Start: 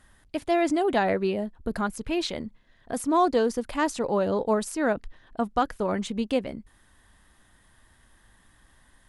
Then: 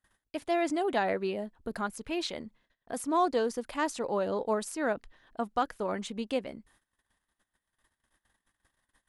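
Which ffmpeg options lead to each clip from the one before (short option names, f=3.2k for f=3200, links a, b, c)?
-af "agate=range=-22dB:threshold=-55dB:ratio=16:detection=peak,lowshelf=f=180:g=-10,volume=-4dB"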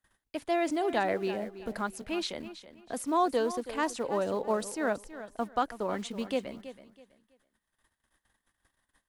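-filter_complex "[0:a]aecho=1:1:326|652|978:0.211|0.055|0.0143,acrossover=split=250[a][b];[a]acrusher=bits=4:mode=log:mix=0:aa=0.000001[c];[c][b]amix=inputs=2:normalize=0"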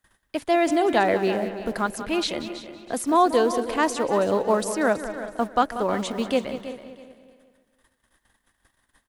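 -filter_complex "[0:a]asplit=2[a][b];[b]adelay=186,lowpass=f=5k:p=1,volume=-12dB,asplit=2[c][d];[d]adelay=186,lowpass=f=5k:p=1,volume=0.54,asplit=2[e][f];[f]adelay=186,lowpass=f=5k:p=1,volume=0.54,asplit=2[g][h];[h]adelay=186,lowpass=f=5k:p=1,volume=0.54,asplit=2[i][j];[j]adelay=186,lowpass=f=5k:p=1,volume=0.54,asplit=2[k][l];[l]adelay=186,lowpass=f=5k:p=1,volume=0.54[m];[a][c][e][g][i][k][m]amix=inputs=7:normalize=0,volume=8dB"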